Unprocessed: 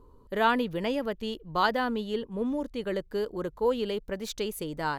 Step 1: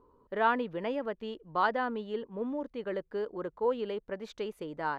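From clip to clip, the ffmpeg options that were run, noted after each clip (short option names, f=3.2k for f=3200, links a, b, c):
-af "lowpass=1.7k,aemphasis=mode=production:type=bsi,volume=-1.5dB"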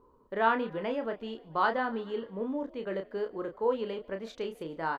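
-filter_complex "[0:a]asplit=2[a][b];[b]adelay=31,volume=-6.5dB[c];[a][c]amix=inputs=2:normalize=0,asplit=5[d][e][f][g][h];[e]adelay=145,afreqshift=47,volume=-24dB[i];[f]adelay=290,afreqshift=94,volume=-28dB[j];[g]adelay=435,afreqshift=141,volume=-32dB[k];[h]adelay=580,afreqshift=188,volume=-36dB[l];[d][i][j][k][l]amix=inputs=5:normalize=0"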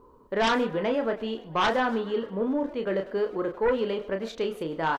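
-filter_complex "[0:a]aeval=exprs='0.251*sin(PI/2*3.16*val(0)/0.251)':c=same,asplit=2[a][b];[b]adelay=100,highpass=300,lowpass=3.4k,asoftclip=type=hard:threshold=-22dB,volume=-13dB[c];[a][c]amix=inputs=2:normalize=0,volume=-6.5dB"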